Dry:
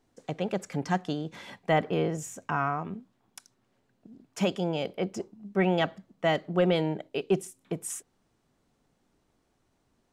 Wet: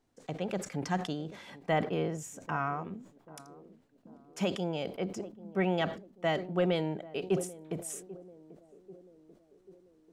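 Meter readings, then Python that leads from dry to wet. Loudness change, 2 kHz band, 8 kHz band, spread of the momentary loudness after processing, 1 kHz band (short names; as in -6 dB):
-4.0 dB, -4.0 dB, -3.0 dB, 20 LU, -4.0 dB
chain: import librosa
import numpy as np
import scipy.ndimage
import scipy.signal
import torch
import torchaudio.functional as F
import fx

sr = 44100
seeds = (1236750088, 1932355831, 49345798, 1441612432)

y = fx.echo_banded(x, sr, ms=789, feedback_pct=60, hz=330.0, wet_db=-16.5)
y = fx.sustainer(y, sr, db_per_s=120.0)
y = F.gain(torch.from_numpy(y), -4.5).numpy()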